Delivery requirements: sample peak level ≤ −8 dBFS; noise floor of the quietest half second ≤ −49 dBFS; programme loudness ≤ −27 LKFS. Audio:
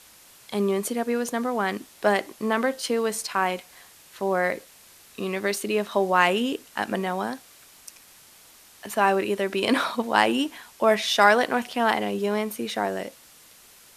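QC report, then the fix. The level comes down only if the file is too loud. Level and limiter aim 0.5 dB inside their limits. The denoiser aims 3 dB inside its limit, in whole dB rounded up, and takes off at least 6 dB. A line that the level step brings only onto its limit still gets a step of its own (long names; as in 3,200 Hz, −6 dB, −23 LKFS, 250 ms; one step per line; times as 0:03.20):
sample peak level −3.0 dBFS: out of spec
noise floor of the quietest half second −52 dBFS: in spec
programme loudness −24.5 LKFS: out of spec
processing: level −3 dB
brickwall limiter −8.5 dBFS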